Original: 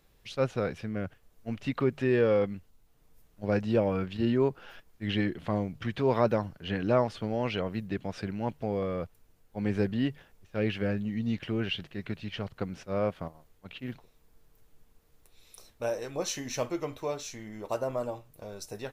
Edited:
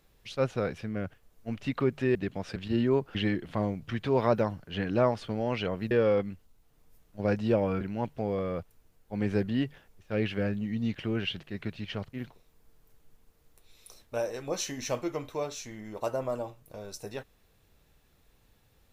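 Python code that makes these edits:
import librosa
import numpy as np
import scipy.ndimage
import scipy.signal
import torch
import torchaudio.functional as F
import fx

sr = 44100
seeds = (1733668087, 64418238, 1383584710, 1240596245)

y = fx.edit(x, sr, fx.swap(start_s=2.15, length_s=1.9, other_s=7.84, other_length_s=0.41),
    fx.cut(start_s=4.64, length_s=0.44),
    fx.cut(start_s=12.57, length_s=1.24), tone=tone)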